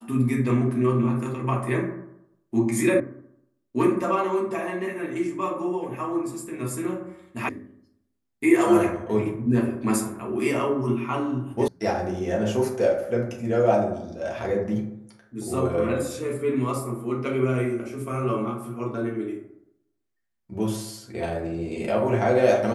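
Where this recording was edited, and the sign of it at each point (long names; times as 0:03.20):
0:03.00: cut off before it has died away
0:07.49: cut off before it has died away
0:11.68: cut off before it has died away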